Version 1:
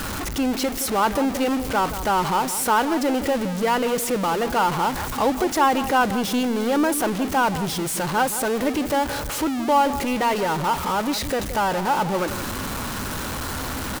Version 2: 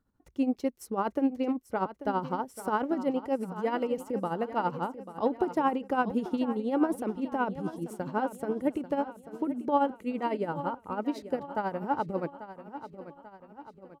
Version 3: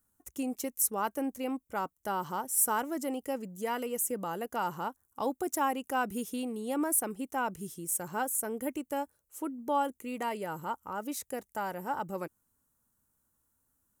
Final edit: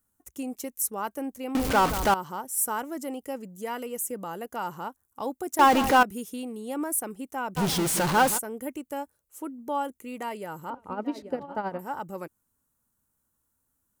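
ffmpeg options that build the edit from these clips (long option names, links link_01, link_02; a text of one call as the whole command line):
ffmpeg -i take0.wav -i take1.wav -i take2.wav -filter_complex "[0:a]asplit=3[link_01][link_02][link_03];[2:a]asplit=5[link_04][link_05][link_06][link_07][link_08];[link_04]atrim=end=1.552[link_09];[link_01]atrim=start=1.548:end=2.142[link_10];[link_05]atrim=start=2.138:end=5.592[link_11];[link_02]atrim=start=5.588:end=6.032[link_12];[link_06]atrim=start=6.028:end=7.58[link_13];[link_03]atrim=start=7.56:end=8.39[link_14];[link_07]atrim=start=8.37:end=10.702[link_15];[1:a]atrim=start=10.698:end=11.792[link_16];[link_08]atrim=start=11.788[link_17];[link_09][link_10]acrossfade=duration=0.004:curve1=hsin:curve2=hsin[link_18];[link_18][link_11]acrossfade=duration=0.004:curve1=hsin:curve2=hsin[link_19];[link_19][link_12]acrossfade=duration=0.004:curve1=hsin:curve2=hsin[link_20];[link_20][link_13]acrossfade=duration=0.004:curve1=hsin:curve2=hsin[link_21];[link_21][link_14]acrossfade=duration=0.02:curve1=tri:curve2=tri[link_22];[link_22][link_15]acrossfade=duration=0.02:curve1=tri:curve2=tri[link_23];[link_23][link_16]acrossfade=duration=0.004:curve1=hsin:curve2=hsin[link_24];[link_24][link_17]acrossfade=duration=0.004:curve1=hsin:curve2=hsin" out.wav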